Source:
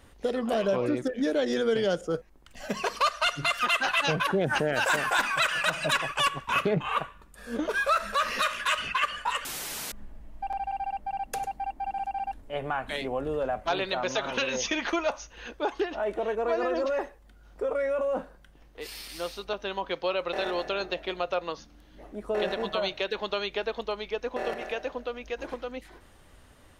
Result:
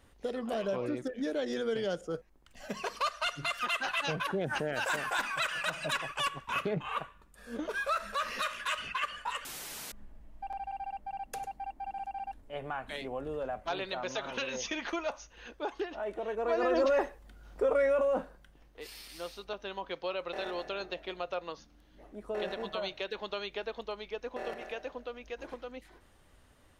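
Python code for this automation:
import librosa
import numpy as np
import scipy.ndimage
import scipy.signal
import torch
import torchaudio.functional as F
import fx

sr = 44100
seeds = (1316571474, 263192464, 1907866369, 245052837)

y = fx.gain(x, sr, db=fx.line((16.25, -7.0), (16.8, 1.5), (17.83, 1.5), (18.94, -7.0)))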